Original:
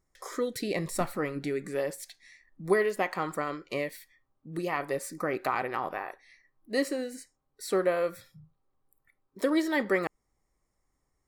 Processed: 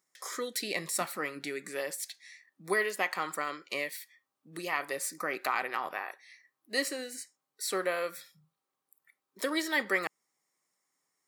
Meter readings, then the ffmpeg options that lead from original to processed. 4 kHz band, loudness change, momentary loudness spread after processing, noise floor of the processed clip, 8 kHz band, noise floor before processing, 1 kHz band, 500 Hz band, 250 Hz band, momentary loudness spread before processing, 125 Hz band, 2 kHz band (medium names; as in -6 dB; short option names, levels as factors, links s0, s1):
+4.5 dB, -2.5 dB, 14 LU, under -85 dBFS, +5.5 dB, -79 dBFS, -2.0 dB, -6.5 dB, -8.0 dB, 14 LU, -12.0 dB, +2.0 dB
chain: -af "highpass=f=160:w=0.5412,highpass=f=160:w=1.3066,tiltshelf=f=970:g=-7.5,volume=0.794"